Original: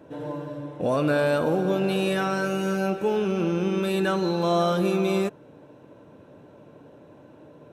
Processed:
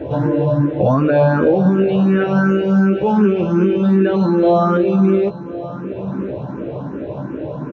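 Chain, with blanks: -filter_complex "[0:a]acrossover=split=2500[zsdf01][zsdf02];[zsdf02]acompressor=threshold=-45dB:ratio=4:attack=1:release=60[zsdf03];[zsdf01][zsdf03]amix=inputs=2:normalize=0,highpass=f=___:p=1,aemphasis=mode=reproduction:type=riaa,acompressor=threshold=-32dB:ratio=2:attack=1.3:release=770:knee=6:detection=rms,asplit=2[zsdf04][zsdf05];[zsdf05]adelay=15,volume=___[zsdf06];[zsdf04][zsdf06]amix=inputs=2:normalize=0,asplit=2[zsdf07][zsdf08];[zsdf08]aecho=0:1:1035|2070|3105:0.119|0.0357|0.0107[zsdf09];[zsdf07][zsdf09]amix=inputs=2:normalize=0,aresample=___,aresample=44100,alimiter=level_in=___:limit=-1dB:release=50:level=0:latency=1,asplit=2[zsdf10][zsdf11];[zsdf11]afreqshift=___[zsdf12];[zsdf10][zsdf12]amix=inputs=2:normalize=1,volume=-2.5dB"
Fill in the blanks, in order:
200, -6.5dB, 16000, 24dB, 2.7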